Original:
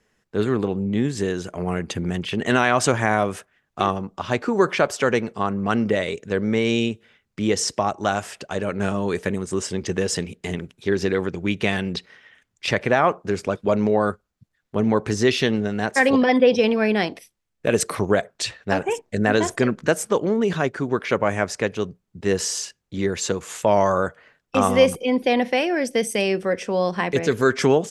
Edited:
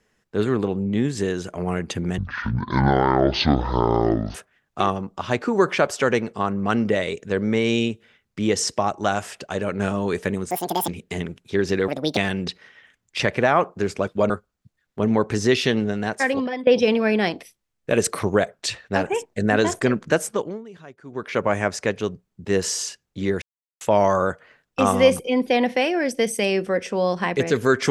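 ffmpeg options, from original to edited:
-filter_complex "[0:a]asplit=13[a][b][c][d][e][f][g][h][i][j][k][l][m];[a]atrim=end=2.184[n];[b]atrim=start=2.18:end=3.35,asetpts=PTS-STARTPTS,asetrate=23814,aresample=44100[o];[c]atrim=start=3.346:end=9.514[p];[d]atrim=start=9.51:end=10.21,asetpts=PTS-STARTPTS,asetrate=82908,aresample=44100,atrim=end_sample=16420,asetpts=PTS-STARTPTS[q];[e]atrim=start=10.206:end=11.214[r];[f]atrim=start=11.21:end=11.65,asetpts=PTS-STARTPTS,asetrate=67032,aresample=44100[s];[g]atrim=start=11.646:end=13.782[t];[h]atrim=start=14.058:end=16.43,asetpts=PTS-STARTPTS,afade=t=out:st=1.652:d=0.72:silence=0.141254[u];[i]atrim=start=16.43:end=20.4,asetpts=PTS-STARTPTS,afade=t=in:d=0.004:c=hsin:silence=0.141254,afade=t=out:st=3.53:d=0.44:silence=0.0944061[v];[j]atrim=start=20.4:end=20.79,asetpts=PTS-STARTPTS,volume=-20.5dB[w];[k]atrim=start=20.79:end=23.18,asetpts=PTS-STARTPTS,afade=t=in:d=0.44:silence=0.0944061,afade=t=out:st=2.386:d=0.004:c=hsin[x];[l]atrim=start=23.18:end=23.57,asetpts=PTS-STARTPTS,volume=0[y];[m]atrim=start=23.57,asetpts=PTS-STARTPTS,afade=t=in:d=0.004:c=hsin[z];[n][o]acrossfade=d=0.004:c1=hsin:c2=hsin[aa];[aa][p]acrossfade=d=0.004:c1=hsin:c2=hsin[ab];[ab][q]acrossfade=d=0.004:c1=hsin:c2=hsin[ac];[ac][r]acrossfade=d=0.004:c1=hsin:c2=hsin[ad];[ad][s]acrossfade=d=0.004:c1=hsin:c2=hsin[ae];[ae][t]acrossfade=d=0.004:c1=hsin:c2=hsin[af];[u][v][w][x][y][z]concat=n=6:v=0:a=1[ag];[af][ag]acrossfade=d=0.004:c1=hsin:c2=hsin"

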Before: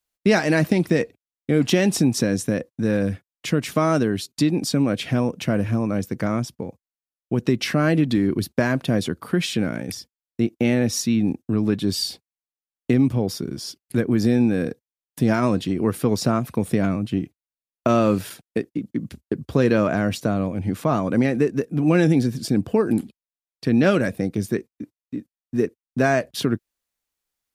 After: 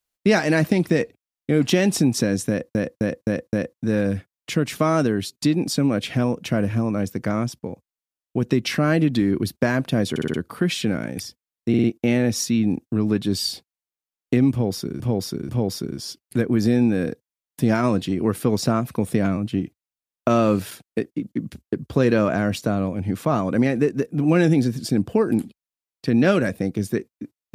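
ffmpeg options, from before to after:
-filter_complex "[0:a]asplit=14[a][b][c][d][e][f][g][h][i][j][k][l][m][n];[a]atrim=end=2.752[o];[b]atrim=start=2.488:end=2.752[p];[c]atrim=start=2.488:end=2.752[q];[d]atrim=start=2.488:end=2.752[r];[e]atrim=start=2.488:end=9.122[s];[f]atrim=start=9.058:end=9.122[t];[g]atrim=start=9.058:end=9.122[u];[h]atrim=start=9.058:end=9.122[v];[i]atrim=start=9.058:end=10.462[w];[j]atrim=start=10.408:end=10.462[x];[k]atrim=start=10.408:end=10.462[y];[l]atrim=start=10.408:end=13.572[z];[m]atrim=start=13.078:end=13.572[aa];[n]atrim=start=13.078[ab];[o][p]acrossfade=d=0.004:c1=hsin:c2=hsin[ac];[ac][q]acrossfade=d=0.004:c1=hsin:c2=hsin[ad];[ad][r]acrossfade=d=0.004:c1=hsin:c2=hsin[ae];[ae][s]acrossfade=d=0.004:c1=hsin:c2=hsin[af];[af][t]acrossfade=d=0.004:c1=hsin:c2=hsin[ag];[ag][u]acrossfade=d=0.004:c1=hsin:c2=hsin[ah];[ah][v]acrossfade=d=0.004:c1=hsin:c2=hsin[ai];[ai][w]acrossfade=d=0.004:c1=hsin:c2=hsin[aj];[aj][x]acrossfade=d=0.004:c1=hsin:c2=hsin[ak];[ak][y]acrossfade=d=0.004:c1=hsin:c2=hsin[al];[al][z]acrossfade=d=0.004:c1=hsin:c2=hsin[am];[am][aa]acrossfade=d=0.004:c1=hsin:c2=hsin[an];[an][ab]acrossfade=d=0.004:c1=hsin:c2=hsin"

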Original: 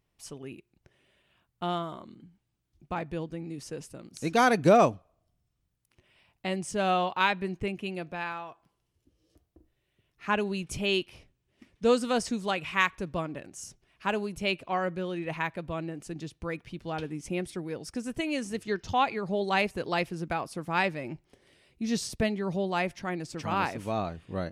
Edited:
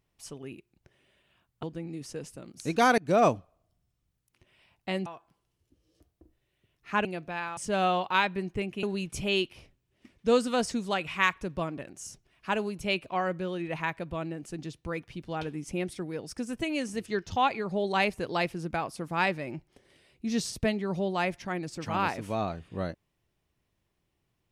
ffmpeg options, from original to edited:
-filter_complex "[0:a]asplit=7[a][b][c][d][e][f][g];[a]atrim=end=1.632[h];[b]atrim=start=3.198:end=4.55,asetpts=PTS-STARTPTS,afade=t=out:st=1.348:d=0.004:c=hsin:silence=0.0668344[i];[c]atrim=start=4.55:end=6.632,asetpts=PTS-STARTPTS,afade=t=in:d=0.3:silence=0.0668344[j];[d]atrim=start=8.408:end=10.402[k];[e]atrim=start=7.888:end=8.412[l];[f]atrim=start=6.628:end=7.892[m];[g]atrim=start=10.398[n];[i][j]concat=n=2:v=0:a=1[o];[h][o]acrossfade=d=0.004:c1=hsin:c2=hsin[p];[p][k]acrossfade=d=0.004:c1=hsin:c2=hsin[q];[q][l]acrossfade=d=0.004:c1=hsin:c2=hsin[r];[r][m]acrossfade=d=0.004:c1=hsin:c2=hsin[s];[s][n]acrossfade=d=0.004:c1=hsin:c2=hsin"

